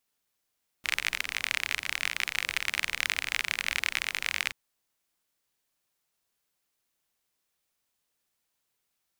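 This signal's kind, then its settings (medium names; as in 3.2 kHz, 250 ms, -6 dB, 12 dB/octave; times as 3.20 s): rain from filtered ticks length 3.68 s, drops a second 41, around 2.2 kHz, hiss -19.5 dB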